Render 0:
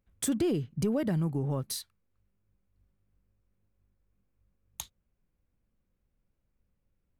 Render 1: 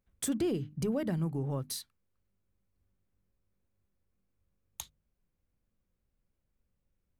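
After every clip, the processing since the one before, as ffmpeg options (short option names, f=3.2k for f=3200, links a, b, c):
-af "bandreject=f=50:t=h:w=6,bandreject=f=100:t=h:w=6,bandreject=f=150:t=h:w=6,bandreject=f=200:t=h:w=6,bandreject=f=250:t=h:w=6,bandreject=f=300:t=h:w=6,volume=-2.5dB"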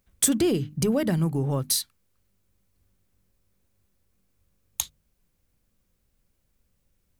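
-af "highshelf=f=2.8k:g=7.5,volume=8dB"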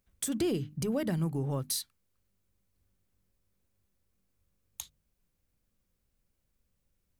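-af "alimiter=limit=-15dB:level=0:latency=1:release=136,volume=-6.5dB"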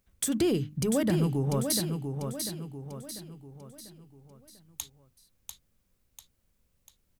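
-af "aecho=1:1:694|1388|2082|2776|3470:0.501|0.226|0.101|0.0457|0.0206,volume=4dB"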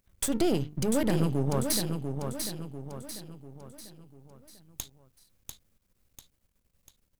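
-af "aeval=exprs='if(lt(val(0),0),0.251*val(0),val(0))':c=same,volume=3dB"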